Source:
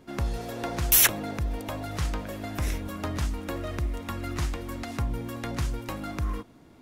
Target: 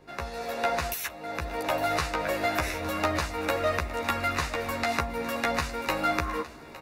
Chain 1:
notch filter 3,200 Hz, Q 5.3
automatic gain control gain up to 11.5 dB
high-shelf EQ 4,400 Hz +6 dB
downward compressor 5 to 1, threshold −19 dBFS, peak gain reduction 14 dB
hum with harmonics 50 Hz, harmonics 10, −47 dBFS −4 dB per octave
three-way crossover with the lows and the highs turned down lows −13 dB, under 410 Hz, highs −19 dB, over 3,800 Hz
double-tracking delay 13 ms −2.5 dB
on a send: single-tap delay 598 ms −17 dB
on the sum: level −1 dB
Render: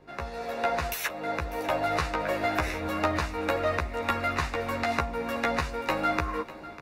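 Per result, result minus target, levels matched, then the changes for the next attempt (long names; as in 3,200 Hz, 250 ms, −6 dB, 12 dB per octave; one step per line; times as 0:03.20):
echo 263 ms early; 8,000 Hz band −4.0 dB
change: single-tap delay 861 ms −17 dB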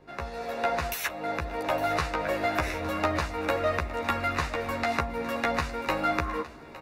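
8,000 Hz band −4.0 dB
change: high-shelf EQ 4,400 Hz +15 dB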